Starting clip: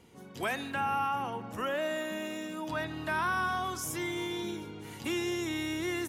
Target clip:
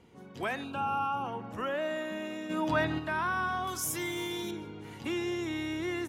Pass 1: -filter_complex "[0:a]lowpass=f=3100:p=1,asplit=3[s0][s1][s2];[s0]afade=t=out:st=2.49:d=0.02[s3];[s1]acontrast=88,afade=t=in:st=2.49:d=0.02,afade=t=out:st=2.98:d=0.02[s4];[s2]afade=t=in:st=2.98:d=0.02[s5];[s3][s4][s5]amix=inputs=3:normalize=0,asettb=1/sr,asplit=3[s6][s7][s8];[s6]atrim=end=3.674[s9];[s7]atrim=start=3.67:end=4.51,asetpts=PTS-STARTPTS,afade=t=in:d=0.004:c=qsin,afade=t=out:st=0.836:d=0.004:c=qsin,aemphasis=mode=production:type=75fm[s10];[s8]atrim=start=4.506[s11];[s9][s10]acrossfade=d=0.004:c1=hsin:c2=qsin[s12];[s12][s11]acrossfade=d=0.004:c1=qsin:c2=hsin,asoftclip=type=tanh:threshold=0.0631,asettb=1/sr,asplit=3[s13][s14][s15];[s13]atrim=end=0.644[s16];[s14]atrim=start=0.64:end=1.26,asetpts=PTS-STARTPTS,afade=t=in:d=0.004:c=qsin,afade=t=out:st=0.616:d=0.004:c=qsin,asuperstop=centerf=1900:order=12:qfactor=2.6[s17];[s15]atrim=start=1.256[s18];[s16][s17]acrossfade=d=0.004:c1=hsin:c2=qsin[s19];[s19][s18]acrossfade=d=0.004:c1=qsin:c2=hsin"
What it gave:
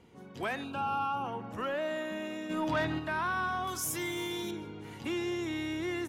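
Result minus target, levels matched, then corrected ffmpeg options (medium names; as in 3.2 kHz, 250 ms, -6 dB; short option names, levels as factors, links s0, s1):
saturation: distortion +19 dB
-filter_complex "[0:a]lowpass=f=3100:p=1,asplit=3[s0][s1][s2];[s0]afade=t=out:st=2.49:d=0.02[s3];[s1]acontrast=88,afade=t=in:st=2.49:d=0.02,afade=t=out:st=2.98:d=0.02[s4];[s2]afade=t=in:st=2.98:d=0.02[s5];[s3][s4][s5]amix=inputs=3:normalize=0,asettb=1/sr,asplit=3[s6][s7][s8];[s6]atrim=end=3.674[s9];[s7]atrim=start=3.67:end=4.51,asetpts=PTS-STARTPTS,afade=t=in:d=0.004:c=qsin,afade=t=out:st=0.836:d=0.004:c=qsin,aemphasis=mode=production:type=75fm[s10];[s8]atrim=start=4.506[s11];[s9][s10]acrossfade=d=0.004:c1=hsin:c2=qsin[s12];[s12][s11]acrossfade=d=0.004:c1=qsin:c2=hsin,asoftclip=type=tanh:threshold=0.237,asettb=1/sr,asplit=3[s13][s14][s15];[s13]atrim=end=0.644[s16];[s14]atrim=start=0.64:end=1.26,asetpts=PTS-STARTPTS,afade=t=in:d=0.004:c=qsin,afade=t=out:st=0.616:d=0.004:c=qsin,asuperstop=centerf=1900:order=12:qfactor=2.6[s17];[s15]atrim=start=1.256[s18];[s16][s17]acrossfade=d=0.004:c1=hsin:c2=qsin[s19];[s19][s18]acrossfade=d=0.004:c1=qsin:c2=hsin"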